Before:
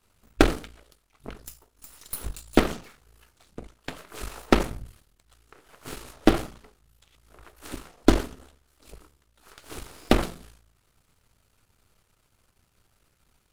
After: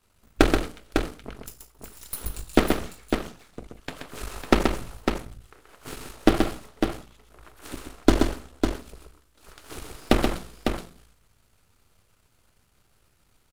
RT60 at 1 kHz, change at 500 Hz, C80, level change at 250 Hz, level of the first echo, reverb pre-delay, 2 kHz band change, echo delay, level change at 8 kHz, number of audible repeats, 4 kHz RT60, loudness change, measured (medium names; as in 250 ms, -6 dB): no reverb, +2.0 dB, no reverb, +2.0 dB, -5.0 dB, no reverb, +2.0 dB, 129 ms, +2.0 dB, 2, no reverb, 0.0 dB